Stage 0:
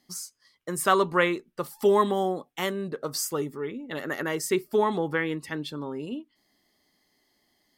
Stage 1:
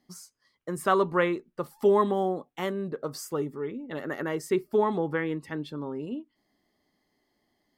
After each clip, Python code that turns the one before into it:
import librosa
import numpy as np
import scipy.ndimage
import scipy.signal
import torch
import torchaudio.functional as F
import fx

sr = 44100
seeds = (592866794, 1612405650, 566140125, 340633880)

y = fx.high_shelf(x, sr, hz=2100.0, db=-11.0)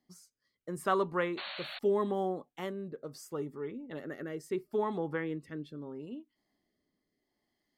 y = fx.spec_paint(x, sr, seeds[0], shape='noise', start_s=1.37, length_s=0.42, low_hz=530.0, high_hz=4500.0, level_db=-31.0)
y = fx.rotary(y, sr, hz=0.75)
y = y * 10.0 ** (-5.5 / 20.0)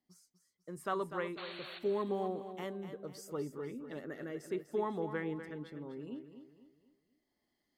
y = fx.rider(x, sr, range_db=3, speed_s=2.0)
y = fx.echo_feedback(y, sr, ms=247, feedback_pct=39, wet_db=-10)
y = y * 10.0 ** (-4.5 / 20.0)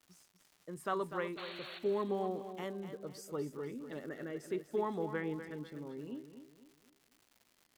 y = fx.dmg_crackle(x, sr, seeds[1], per_s=260.0, level_db=-52.0)